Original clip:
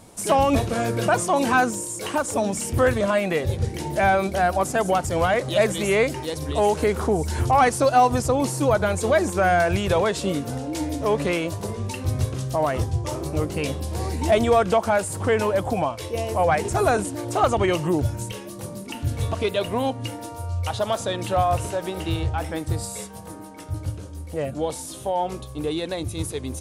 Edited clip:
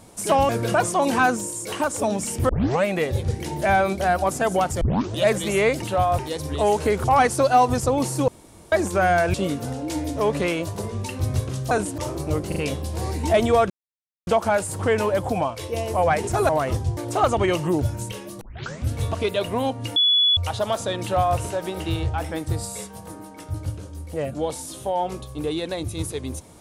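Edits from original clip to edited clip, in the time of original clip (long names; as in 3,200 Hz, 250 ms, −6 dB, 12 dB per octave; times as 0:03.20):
0:00.49–0:00.83: remove
0:02.83: tape start 0.35 s
0:05.15: tape start 0.38 s
0:07.01–0:07.46: remove
0:08.70–0:09.14: fill with room tone
0:09.76–0:10.19: remove
0:12.56–0:13.04: swap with 0:16.90–0:17.17
0:13.54: stutter 0.04 s, 3 plays
0:14.68: splice in silence 0.57 s
0:18.61: tape start 0.50 s
0:20.16–0:20.57: beep over 3,410 Hz −14.5 dBFS
0:21.21–0:21.58: duplicate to 0:06.16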